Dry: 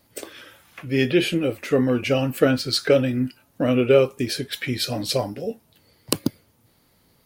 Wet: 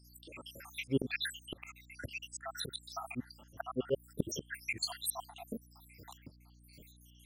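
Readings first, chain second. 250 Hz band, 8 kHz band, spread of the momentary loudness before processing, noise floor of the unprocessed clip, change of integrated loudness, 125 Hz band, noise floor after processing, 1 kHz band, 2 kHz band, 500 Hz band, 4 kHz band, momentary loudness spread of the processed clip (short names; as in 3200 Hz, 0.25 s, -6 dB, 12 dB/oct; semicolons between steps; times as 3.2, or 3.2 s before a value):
-19.5 dB, -9.0 dB, 13 LU, -62 dBFS, -17.5 dB, -18.5 dB, -61 dBFS, -13.0 dB, -13.0 dB, -21.5 dB, -14.5 dB, 20 LU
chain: random spectral dropouts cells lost 84%; auto swell 0.494 s; hum 60 Hz, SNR 19 dB; gain +9.5 dB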